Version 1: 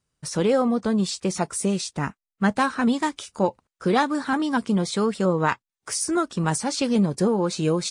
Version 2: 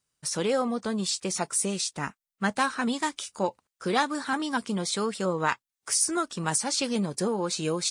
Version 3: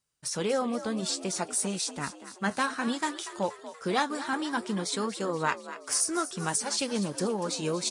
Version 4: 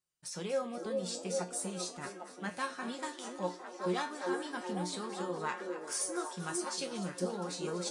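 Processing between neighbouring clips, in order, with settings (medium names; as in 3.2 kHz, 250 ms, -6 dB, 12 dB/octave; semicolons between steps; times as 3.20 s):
tilt EQ +2 dB/octave; trim -3.5 dB
flange 0.59 Hz, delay 0.9 ms, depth 8 ms, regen -70%; on a send: frequency-shifting echo 238 ms, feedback 56%, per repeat +56 Hz, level -13.5 dB; on the sum: trim +2 dB
feedback comb 180 Hz, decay 0.27 s, harmonics all, mix 80%; repeats whose band climbs or falls 402 ms, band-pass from 400 Hz, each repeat 0.7 oct, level 0 dB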